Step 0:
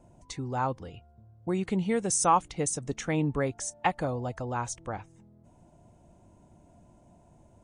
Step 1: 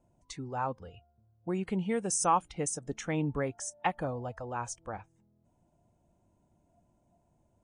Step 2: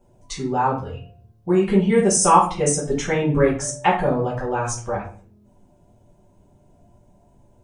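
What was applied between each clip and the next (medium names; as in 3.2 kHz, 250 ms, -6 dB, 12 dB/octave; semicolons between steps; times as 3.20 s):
spectral noise reduction 9 dB; trim -3.5 dB
simulated room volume 39 m³, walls mixed, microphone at 1.2 m; trim +6 dB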